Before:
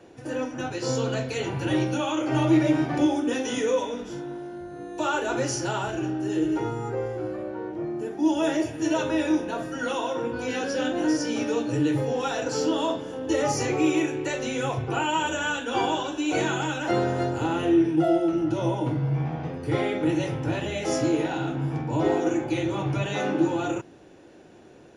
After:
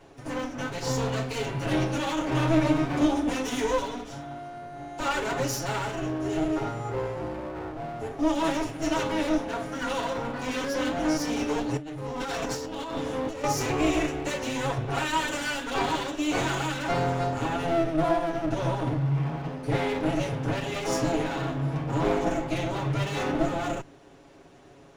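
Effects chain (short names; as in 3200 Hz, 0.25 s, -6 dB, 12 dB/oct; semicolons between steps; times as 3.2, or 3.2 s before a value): minimum comb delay 7.2 ms; 11.77–13.44 negative-ratio compressor -33 dBFS, ratio -1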